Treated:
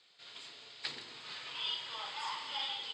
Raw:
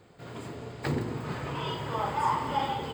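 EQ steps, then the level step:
transistor ladder low-pass 4,600 Hz, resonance 45%
first difference
high-shelf EQ 3,400 Hz +9.5 dB
+10.5 dB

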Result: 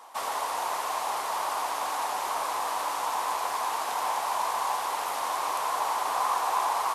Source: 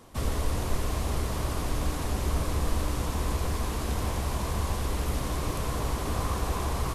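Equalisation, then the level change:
high-pass with resonance 860 Hz, resonance Q 3.6
+2.0 dB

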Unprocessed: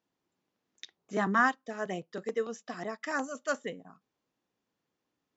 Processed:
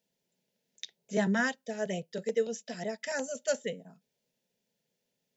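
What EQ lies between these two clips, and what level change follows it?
Butterworth band-reject 760 Hz, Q 7.4
high-shelf EQ 5,000 Hz +4.5 dB
phaser with its sweep stopped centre 310 Hz, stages 6
+4.0 dB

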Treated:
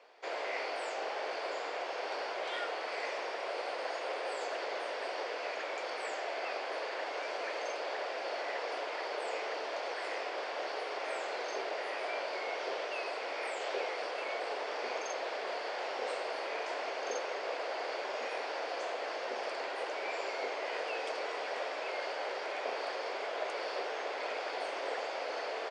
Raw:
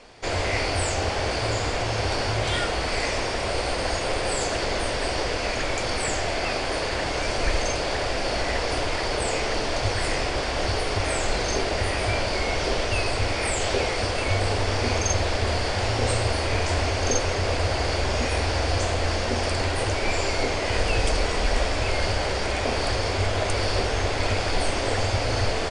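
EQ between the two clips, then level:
high-pass filter 430 Hz 24 dB per octave
high-frequency loss of the air 66 metres
high-shelf EQ 4,600 Hz −11 dB
−8.5 dB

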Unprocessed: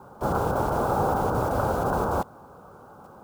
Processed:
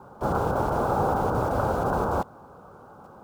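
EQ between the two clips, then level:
high-shelf EQ 7,500 Hz −7.5 dB
0.0 dB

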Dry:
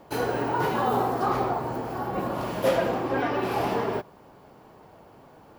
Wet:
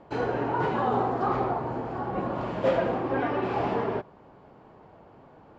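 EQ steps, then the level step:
low-pass with resonance 7,200 Hz, resonance Q 5
high-frequency loss of the air 360 metres
0.0 dB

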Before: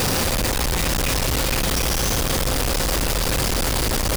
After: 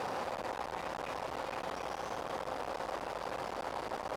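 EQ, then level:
resonant band-pass 810 Hz, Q 1.6
−7.5 dB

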